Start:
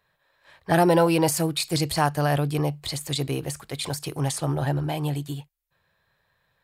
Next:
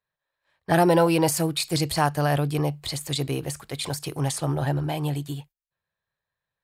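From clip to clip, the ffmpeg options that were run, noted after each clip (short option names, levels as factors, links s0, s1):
-af "agate=range=0.141:threshold=0.00398:ratio=16:detection=peak"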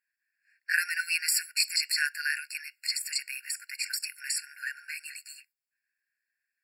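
-af "afftfilt=real='re*eq(mod(floor(b*sr/1024/1400),2),1)':imag='im*eq(mod(floor(b*sr/1024/1400),2),1)':win_size=1024:overlap=0.75,volume=1.68"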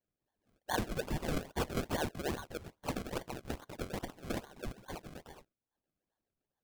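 -af "acrusher=samples=33:mix=1:aa=0.000001:lfo=1:lforange=33:lforate=2.4,asoftclip=type=tanh:threshold=0.133,volume=0.531"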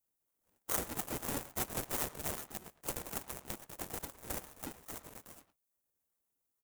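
-filter_complex "[0:a]asplit=2[s0][s1];[s1]adelay=110,highpass=300,lowpass=3400,asoftclip=type=hard:threshold=0.0224,volume=0.251[s2];[s0][s2]amix=inputs=2:normalize=0,aexciter=amount=6.8:drive=3.8:freq=6200,aeval=exprs='val(0)*sgn(sin(2*PI*280*n/s))':c=same,volume=0.501"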